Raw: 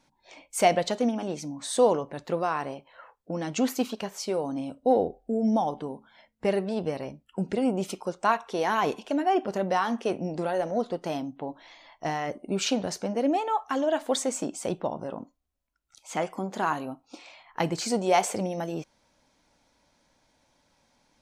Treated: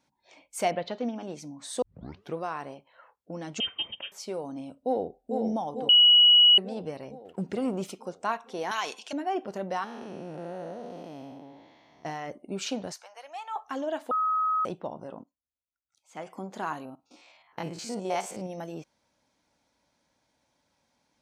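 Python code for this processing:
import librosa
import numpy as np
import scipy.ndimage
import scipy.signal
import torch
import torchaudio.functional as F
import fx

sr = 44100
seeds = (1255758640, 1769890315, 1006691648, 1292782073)

y = fx.lowpass(x, sr, hz=fx.line((0.7, 3200.0), (1.26, 6900.0)), slope=24, at=(0.7, 1.26), fade=0.02)
y = fx.freq_invert(y, sr, carrier_hz=3400, at=(3.6, 4.12))
y = fx.echo_throw(y, sr, start_s=4.79, length_s=0.56, ms=450, feedback_pct=65, wet_db=-4.5)
y = fx.leveller(y, sr, passes=1, at=(7.25, 7.9))
y = fx.weighting(y, sr, curve='ITU-R 468', at=(8.71, 9.13))
y = fx.spec_blur(y, sr, span_ms=384.0, at=(9.84, 12.05))
y = fx.highpass(y, sr, hz=860.0, slope=24, at=(12.92, 13.56))
y = fx.upward_expand(y, sr, threshold_db=-38.0, expansion=1.5, at=(15.22, 16.25), fade=0.02)
y = fx.spec_steps(y, sr, hold_ms=50, at=(16.85, 18.5))
y = fx.edit(y, sr, fx.tape_start(start_s=1.82, length_s=0.55),
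    fx.bleep(start_s=5.89, length_s=0.69, hz=2920.0, db=-7.5),
    fx.bleep(start_s=14.11, length_s=0.54, hz=1270.0, db=-17.0), tone=tone)
y = scipy.signal.sosfilt(scipy.signal.butter(2, 60.0, 'highpass', fs=sr, output='sos'), y)
y = y * librosa.db_to_amplitude(-6.0)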